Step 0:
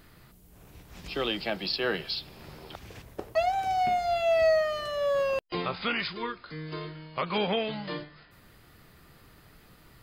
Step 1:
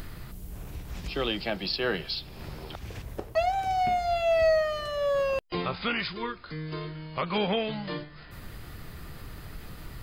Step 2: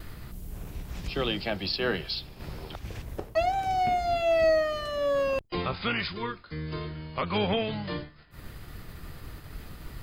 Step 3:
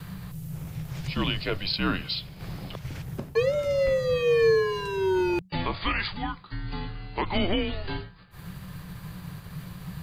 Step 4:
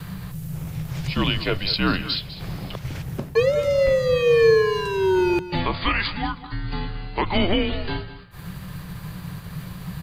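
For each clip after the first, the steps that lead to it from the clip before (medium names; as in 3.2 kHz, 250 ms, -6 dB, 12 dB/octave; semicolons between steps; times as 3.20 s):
upward compressor, threshold -36 dBFS; bass shelf 97 Hz +11 dB
octave divider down 1 oct, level -5 dB; expander -38 dBFS
frequency shift -190 Hz; trim +2 dB
delay 201 ms -14.5 dB; trim +5 dB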